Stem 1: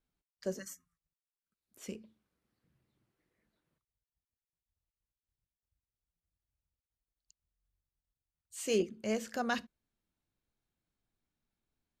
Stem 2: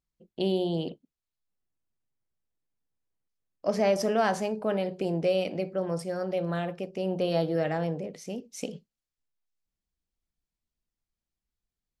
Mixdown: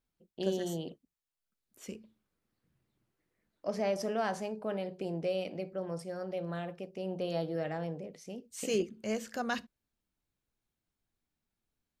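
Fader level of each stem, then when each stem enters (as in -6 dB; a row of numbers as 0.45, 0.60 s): -0.5, -7.5 dB; 0.00, 0.00 s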